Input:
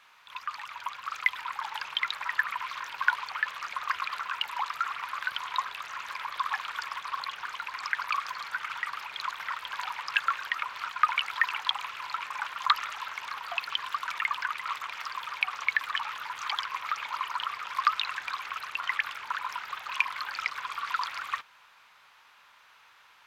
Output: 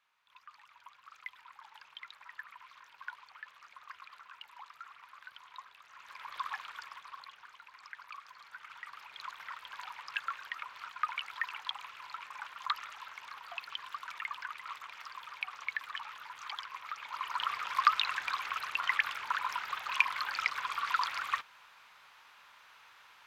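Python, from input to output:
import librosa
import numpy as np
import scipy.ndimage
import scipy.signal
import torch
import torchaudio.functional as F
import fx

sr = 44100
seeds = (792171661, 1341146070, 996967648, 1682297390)

y = fx.gain(x, sr, db=fx.line((5.84, -19.0), (6.38, -7.0), (7.57, -18.0), (8.26, -18.0), (9.27, -10.0), (16.99, -10.0), (17.48, -0.5)))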